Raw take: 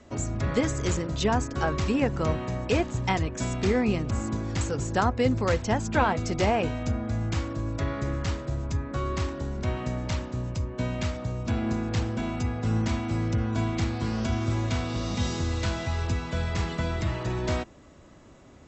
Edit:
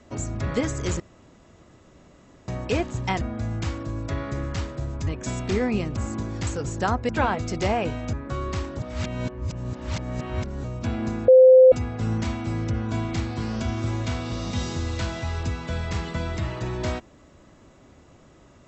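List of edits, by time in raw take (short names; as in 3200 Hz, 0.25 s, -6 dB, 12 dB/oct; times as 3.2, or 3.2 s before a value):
1–2.48 room tone
5.23–5.87 cut
6.91–8.77 move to 3.21
9.43–11.28 reverse
11.92–12.36 bleep 516 Hz -8 dBFS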